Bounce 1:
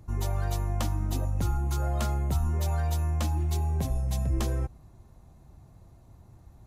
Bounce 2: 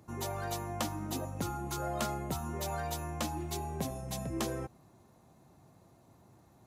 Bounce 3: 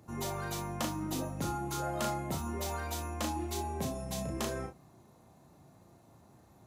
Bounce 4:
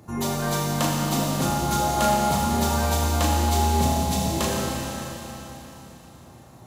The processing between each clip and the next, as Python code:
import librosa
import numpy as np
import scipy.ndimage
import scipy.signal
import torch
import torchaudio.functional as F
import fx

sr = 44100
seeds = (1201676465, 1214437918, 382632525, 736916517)

y1 = scipy.signal.sosfilt(scipy.signal.butter(2, 190.0, 'highpass', fs=sr, output='sos'), x)
y2 = 10.0 ** (-24.0 / 20.0) * np.tanh(y1 / 10.0 ** (-24.0 / 20.0))
y2 = fx.room_early_taps(y2, sr, ms=(35, 61), db=(-4.0, -11.5))
y3 = fx.dereverb_blind(y2, sr, rt60_s=0.54)
y3 = fx.rev_schroeder(y3, sr, rt60_s=3.8, comb_ms=30, drr_db=-2.5)
y3 = y3 * 10.0 ** (9.0 / 20.0)